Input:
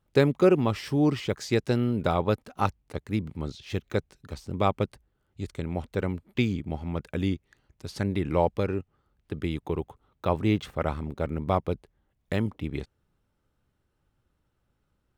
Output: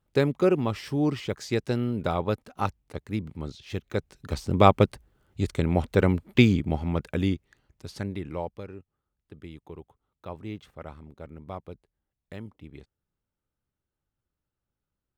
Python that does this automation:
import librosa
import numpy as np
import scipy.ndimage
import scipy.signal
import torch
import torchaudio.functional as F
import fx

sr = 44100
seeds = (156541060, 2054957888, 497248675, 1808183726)

y = fx.gain(x, sr, db=fx.line((3.93, -2.0), (4.33, 7.5), (6.42, 7.5), (7.91, -2.5), (8.67, -13.0)))